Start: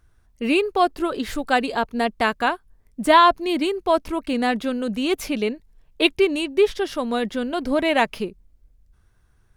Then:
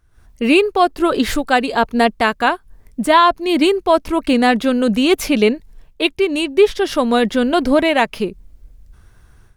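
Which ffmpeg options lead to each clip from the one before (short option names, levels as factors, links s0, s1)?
-af "dynaudnorm=f=110:g=3:m=5.01,volume=0.891"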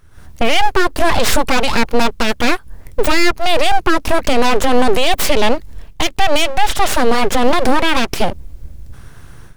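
-af "aeval=exprs='abs(val(0))':c=same,alimiter=level_in=4.47:limit=0.891:release=50:level=0:latency=1,volume=0.891"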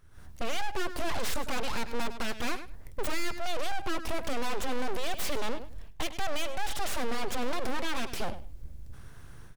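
-af "aecho=1:1:102|204:0.126|0.0201,aeval=exprs='(tanh(2.24*val(0)+0.65)-tanh(0.65))/2.24':c=same,volume=0.447"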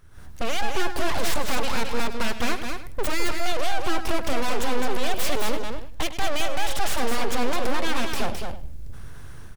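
-af "aecho=1:1:213:0.531,volume=2"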